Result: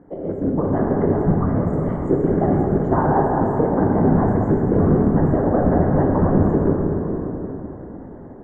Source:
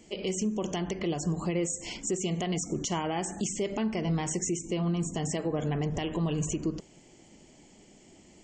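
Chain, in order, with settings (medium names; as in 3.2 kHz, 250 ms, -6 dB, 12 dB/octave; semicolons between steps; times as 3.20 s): rattle on loud lows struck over -33 dBFS, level -30 dBFS; on a send: echo whose repeats swap between lows and highs 193 ms, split 910 Hz, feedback 58%, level -8.5 dB; on the sum: whisper effect; elliptic low-pass 1.6 kHz, stop band 40 dB; in parallel at +2.5 dB: compression, threshold -36 dBFS, peak gain reduction 13.5 dB; 1.12–1.74 s: on the sum: peaking EQ 420 Hz -11.5 dB 0.92 oct; level rider gain up to 7 dB; plate-style reverb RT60 3.5 s, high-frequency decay 0.65×, DRR -0.5 dB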